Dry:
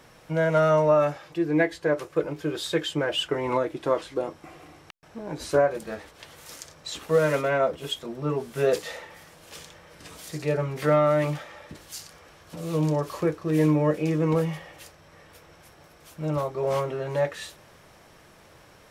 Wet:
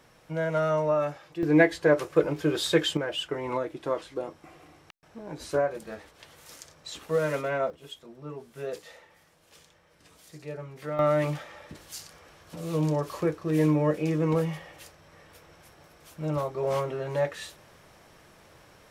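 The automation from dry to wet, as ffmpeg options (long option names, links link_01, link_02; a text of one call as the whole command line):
ffmpeg -i in.wav -af "asetnsamples=nb_out_samples=441:pad=0,asendcmd='1.43 volume volume 3dB;2.97 volume volume -5dB;7.7 volume volume -12.5dB;10.99 volume volume -2dB',volume=-5.5dB" out.wav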